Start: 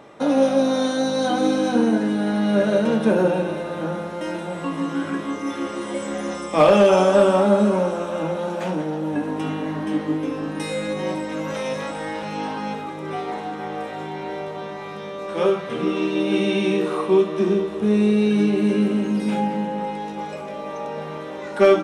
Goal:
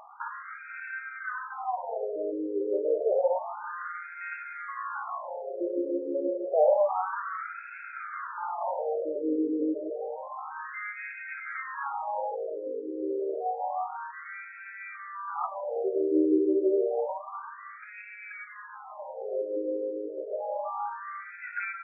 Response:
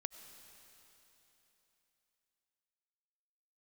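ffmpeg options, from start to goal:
-af "acompressor=threshold=-19dB:ratio=6,afftfilt=real='re*between(b*sr/1024,390*pow(1900/390,0.5+0.5*sin(2*PI*0.29*pts/sr))/1.41,390*pow(1900/390,0.5+0.5*sin(2*PI*0.29*pts/sr))*1.41)':imag='im*between(b*sr/1024,390*pow(1900/390,0.5+0.5*sin(2*PI*0.29*pts/sr))/1.41,390*pow(1900/390,0.5+0.5*sin(2*PI*0.29*pts/sr))*1.41)':win_size=1024:overlap=0.75,volume=1.5dB"

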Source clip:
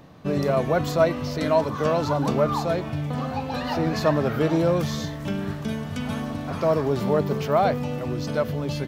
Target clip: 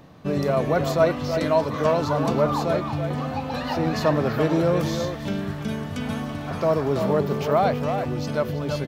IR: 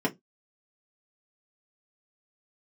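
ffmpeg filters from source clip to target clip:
-filter_complex "[0:a]asplit=2[a][b];[b]adelay=330,highpass=300,lowpass=3.4k,asoftclip=type=hard:threshold=-14.5dB,volume=-6dB[c];[a][c]amix=inputs=2:normalize=0"

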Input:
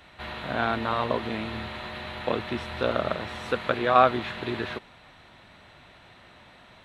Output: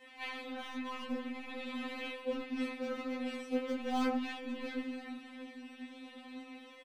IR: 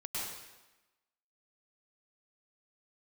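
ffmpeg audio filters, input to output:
-filter_complex "[0:a]asplit=2[a][b];[b]adelay=12,volume=-3.5dB[c];[a][c]amix=inputs=2:normalize=0[d];[1:a]atrim=start_sample=2205,afade=t=out:st=0.14:d=0.01,atrim=end_sample=6615[e];[d][e]afir=irnorm=-1:irlink=0,acrossover=split=350[f][g];[f]dynaudnorm=f=360:g=5:m=12dB[h];[g]adynamicequalizer=threshold=0.00891:dfrequency=1200:dqfactor=2:tfrequency=1200:tqfactor=2:attack=5:release=100:ratio=0.375:range=2.5:mode=boostabove:tftype=bell[i];[h][i]amix=inputs=2:normalize=0,highpass=f=210:w=0.5412,highpass=f=210:w=1.3066,asoftclip=type=hard:threshold=-23.5dB,aecho=1:1:324|648|972:0.1|0.045|0.0202,areverse,acompressor=threshold=-39dB:ratio=16,areverse,flanger=delay=17.5:depth=6.5:speed=0.44,aeval=exprs='0.0188*(cos(1*acos(clip(val(0)/0.0188,-1,1)))-cos(1*PI/2))+0.0015*(cos(2*acos(clip(val(0)/0.0188,-1,1)))-cos(2*PI/2))+0.000376*(cos(7*acos(clip(val(0)/0.0188,-1,1)))-cos(7*PI/2))':c=same,afftfilt=real='re*3.46*eq(mod(b,12),0)':imag='im*3.46*eq(mod(b,12),0)':win_size=2048:overlap=0.75,volume=9dB"

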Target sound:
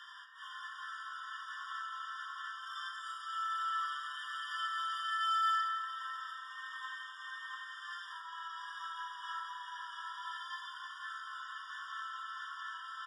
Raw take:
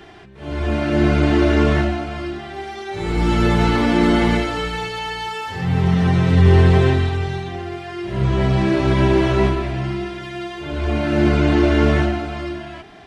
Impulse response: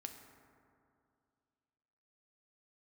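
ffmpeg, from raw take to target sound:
-filter_complex "[0:a]aecho=1:1:691:0.531,asplit=2[a][b];[b]asoftclip=type=hard:threshold=-14.5dB,volume=-7.5dB[c];[a][c]amix=inputs=2:normalize=0,acompressor=threshold=-25dB:ratio=6[d];[1:a]atrim=start_sample=2205[e];[d][e]afir=irnorm=-1:irlink=0,afftfilt=real='re*eq(mod(floor(b*sr/1024/950),2),1)':imag='im*eq(mod(floor(b*sr/1024/950),2),1)':win_size=1024:overlap=0.75"

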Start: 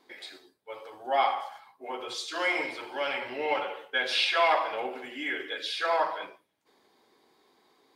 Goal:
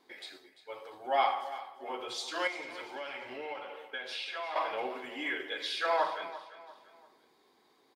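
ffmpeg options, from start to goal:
-filter_complex "[0:a]asettb=1/sr,asplit=3[a][b][c];[a]atrim=end=2.474[d];[b]atrim=start=2.47:end=4.56,asetpts=PTS-STARTPTS,afade=t=in:d=0.004:c=qsin,afade=t=out:st=2.086:d=0.004:c=qsin,acompressor=threshold=-38dB:ratio=3[e];[c]atrim=start=4.556[f];[d][e]acrossfade=d=0.004:c1=hsin:c2=qsin[g];[g][f]acrossfade=d=0.004:c1=qsin:c2=hsin,aecho=1:1:344|688|1032:0.178|0.0676|0.0257,volume=-2.5dB"

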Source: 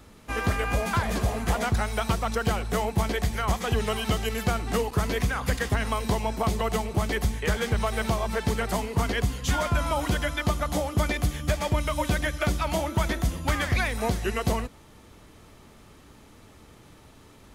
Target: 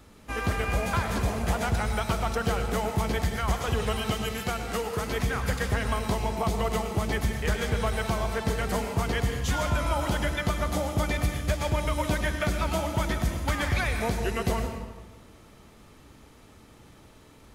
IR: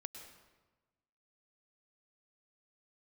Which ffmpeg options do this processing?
-filter_complex "[0:a]asettb=1/sr,asplit=3[a][b][c];[a]atrim=end=4.114[d];[b]atrim=start=4.11:end=5.12,asetpts=PTS-STARTPTS,afade=t=in:d=0.004:c=qsin,afade=t=out:st=1.006:d=0.004:c=qsin,lowshelf=f=340:g=-6.5[e];[c]atrim=start=5.116[f];[d][e]acrossfade=d=0.004:c1=hsin:c2=qsin[g];[g][f]acrossfade=d=0.004:c1=qsin:c2=hsin[h];[1:a]atrim=start_sample=2205[i];[h][i]afir=irnorm=-1:irlink=0,volume=2.5dB"

